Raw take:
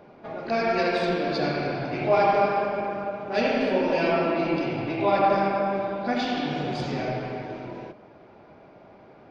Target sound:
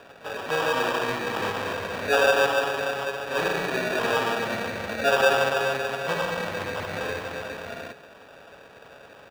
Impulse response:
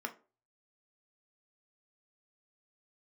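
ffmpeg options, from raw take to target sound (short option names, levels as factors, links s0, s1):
-filter_complex "[0:a]asetrate=30296,aresample=44100,atempo=1.45565,aecho=1:1:1.4:0.33,asplit=2[s0][s1];[s1]acompressor=threshold=0.02:ratio=6,volume=0.891[s2];[s0][s2]amix=inputs=2:normalize=0,acrusher=samples=21:mix=1:aa=0.000001,acrossover=split=510 4000:gain=0.141 1 0.224[s3][s4][s5];[s3][s4][s5]amix=inputs=3:normalize=0,volume=1.58"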